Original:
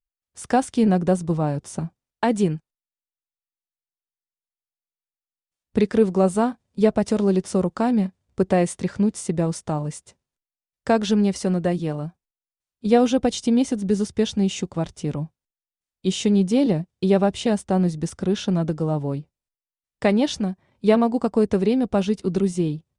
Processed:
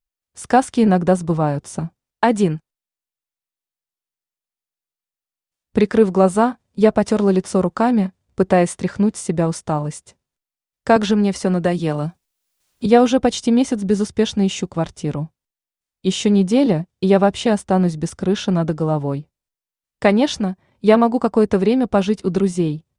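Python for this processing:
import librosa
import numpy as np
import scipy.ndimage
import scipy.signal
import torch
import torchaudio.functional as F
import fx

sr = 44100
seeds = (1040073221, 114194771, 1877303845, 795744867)

y = fx.dynamic_eq(x, sr, hz=1200.0, q=0.71, threshold_db=-35.0, ratio=4.0, max_db=5)
y = fx.band_squash(y, sr, depth_pct=70, at=(10.96, 12.86))
y = F.gain(torch.from_numpy(y), 3.0).numpy()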